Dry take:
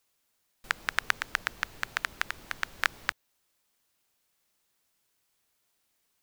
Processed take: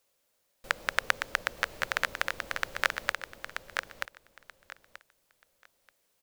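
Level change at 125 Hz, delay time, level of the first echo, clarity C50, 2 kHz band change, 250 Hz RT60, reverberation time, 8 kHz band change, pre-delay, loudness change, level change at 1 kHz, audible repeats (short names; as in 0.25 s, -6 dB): +1.0 dB, 0.932 s, -5.5 dB, none, +1.5 dB, none, none, +1.0 dB, none, 0.0 dB, +2.0 dB, 3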